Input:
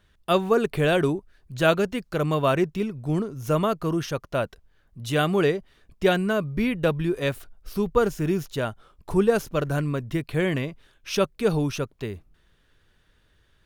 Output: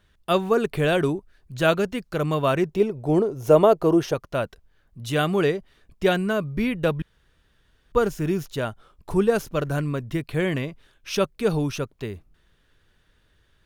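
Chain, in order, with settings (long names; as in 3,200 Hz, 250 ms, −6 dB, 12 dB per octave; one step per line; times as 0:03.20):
0:02.69–0:04.14: flat-topped bell 550 Hz +10 dB
0:07.02–0:07.92: fill with room tone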